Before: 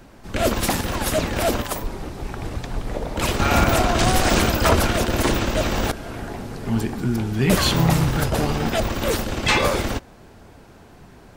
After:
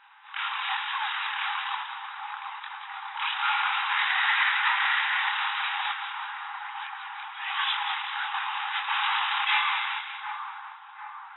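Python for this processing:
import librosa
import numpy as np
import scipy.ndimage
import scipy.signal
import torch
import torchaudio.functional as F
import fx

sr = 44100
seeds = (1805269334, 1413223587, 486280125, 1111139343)

p1 = fx.peak_eq(x, sr, hz=1900.0, db=13.0, octaves=0.36, at=(3.9, 5.21))
p2 = np.clip(10.0 ** (19.5 / 20.0) * p1, -1.0, 1.0) / 10.0 ** (19.5 / 20.0)
p3 = fx.chorus_voices(p2, sr, voices=2, hz=1.1, base_ms=25, depth_ms=3.0, mix_pct=50)
p4 = fx.brickwall_bandpass(p3, sr, low_hz=770.0, high_hz=3900.0)
p5 = p4 + fx.echo_split(p4, sr, split_hz=1500.0, low_ms=749, high_ms=190, feedback_pct=52, wet_db=-7.0, dry=0)
p6 = fx.env_flatten(p5, sr, amount_pct=50, at=(8.88, 9.44), fade=0.02)
y = p6 * librosa.db_to_amplitude(3.5)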